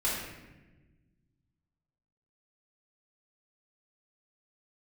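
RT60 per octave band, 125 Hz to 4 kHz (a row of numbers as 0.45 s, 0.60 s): 2.4 s, 2.0 s, 1.4 s, 0.95 s, 1.1 s, 0.80 s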